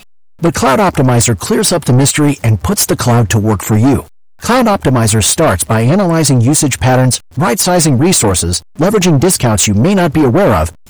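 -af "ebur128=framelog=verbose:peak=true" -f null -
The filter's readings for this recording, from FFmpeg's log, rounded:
Integrated loudness:
  I:         -10.4 LUFS
  Threshold: -20.6 LUFS
Loudness range:
  LRA:         1.3 LU
  Threshold: -30.6 LUFS
  LRA low:   -11.3 LUFS
  LRA high:  -10.0 LUFS
True peak:
  Peak:       -3.2 dBFS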